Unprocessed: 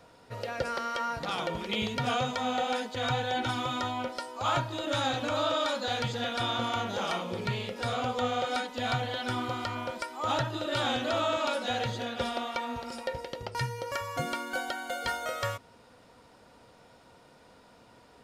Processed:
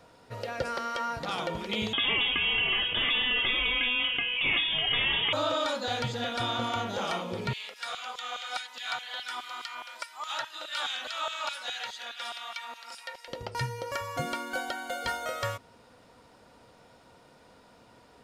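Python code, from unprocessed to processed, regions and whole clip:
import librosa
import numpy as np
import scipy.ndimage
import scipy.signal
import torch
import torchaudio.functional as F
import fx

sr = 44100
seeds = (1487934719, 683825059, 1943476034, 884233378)

y = fx.chain(x, sr, fx.freq_invert(carrier_hz=3500),
    fx.env_flatten(amount_pct=70), at=(1.93, 5.33))
y = fx.chain(y, sr, fx.peak_eq(hz=510.0, db=-4.0, octaves=1.3),
    fx.filter_lfo_highpass(shape='saw_down', hz=4.8, low_hz=680.0, high_hz=2800.0, q=0.86), at=(7.53, 13.28))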